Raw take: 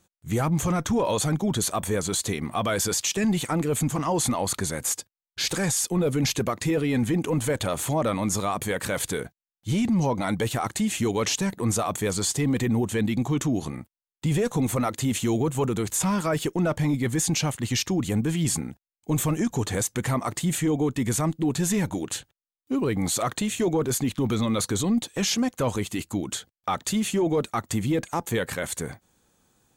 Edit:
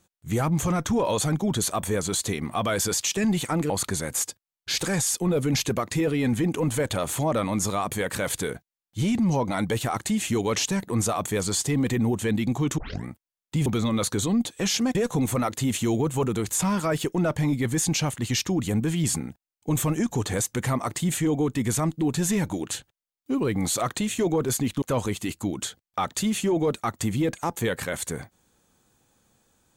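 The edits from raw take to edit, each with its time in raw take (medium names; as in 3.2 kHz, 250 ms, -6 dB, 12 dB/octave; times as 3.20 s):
3.70–4.40 s: delete
13.48 s: tape start 0.28 s
24.23–25.52 s: move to 14.36 s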